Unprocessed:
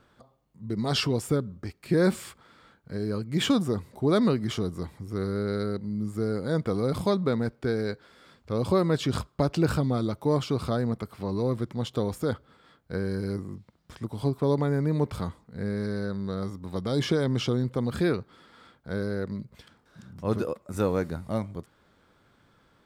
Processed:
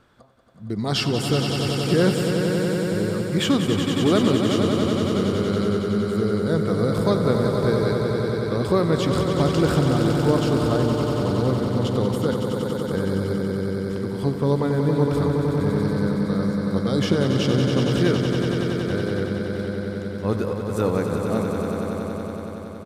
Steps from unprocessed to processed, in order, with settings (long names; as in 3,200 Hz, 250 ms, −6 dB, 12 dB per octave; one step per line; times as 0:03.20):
echo that builds up and dies away 93 ms, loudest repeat 5, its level −7.5 dB
downsampling to 32,000 Hz
level +3 dB